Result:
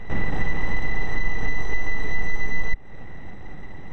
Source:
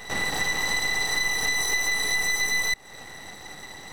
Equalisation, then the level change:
Savitzky-Golay smoothing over 25 samples
spectral tilt −3 dB per octave
parametric band 870 Hz −5.5 dB 2.9 octaves
+2.0 dB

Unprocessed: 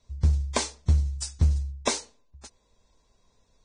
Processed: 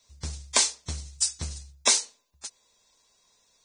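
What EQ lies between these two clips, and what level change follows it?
spectral tilt +4 dB per octave
high-shelf EQ 7,800 Hz −3.5 dB
0.0 dB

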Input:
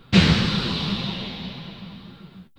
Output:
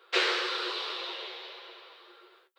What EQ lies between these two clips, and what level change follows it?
Chebyshev high-pass with heavy ripple 350 Hz, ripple 6 dB
−1.5 dB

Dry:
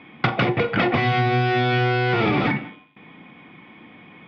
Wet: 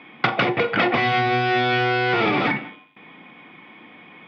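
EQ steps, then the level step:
high-pass filter 350 Hz 6 dB per octave
+2.5 dB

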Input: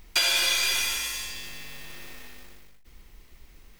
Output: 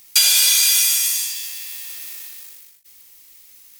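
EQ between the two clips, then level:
high-pass filter 360 Hz 6 dB per octave
high-shelf EQ 4,500 Hz +10.5 dB
parametric band 14,000 Hz +15 dB 2.6 octaves
−6.5 dB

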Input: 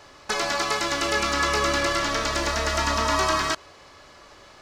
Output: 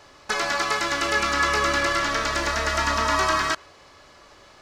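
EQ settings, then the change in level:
dynamic equaliser 1,600 Hz, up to +5 dB, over −35 dBFS, Q 1.2
−1.5 dB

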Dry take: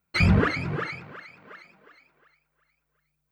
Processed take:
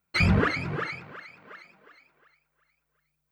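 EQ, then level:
low-shelf EQ 390 Hz −3 dB
0.0 dB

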